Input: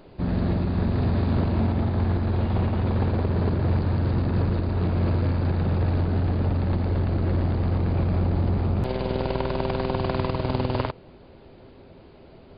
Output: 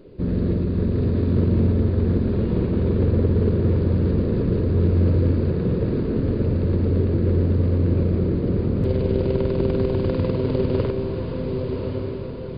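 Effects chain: resonant low shelf 580 Hz +6.5 dB, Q 3; notch 820 Hz, Q 13; on a send: diffused feedback echo 1.149 s, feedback 53%, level -4 dB; on the sum: gain -5 dB

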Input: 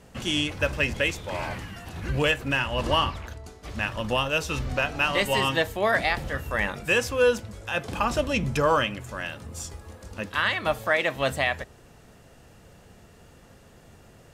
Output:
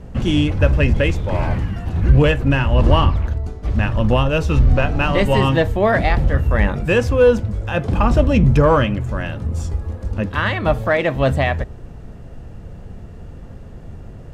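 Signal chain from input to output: tilt -3.5 dB/oct; in parallel at -4 dB: soft clip -15 dBFS, distortion -14 dB; on the sum: gain +2 dB

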